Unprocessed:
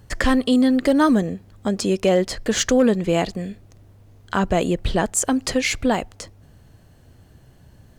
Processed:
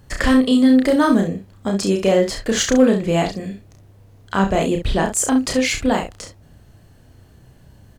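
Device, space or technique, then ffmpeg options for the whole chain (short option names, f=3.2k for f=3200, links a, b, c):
slapback doubling: -filter_complex "[0:a]asplit=3[a][b][c];[b]adelay=31,volume=-3.5dB[d];[c]adelay=66,volume=-8.5dB[e];[a][d][e]amix=inputs=3:normalize=0"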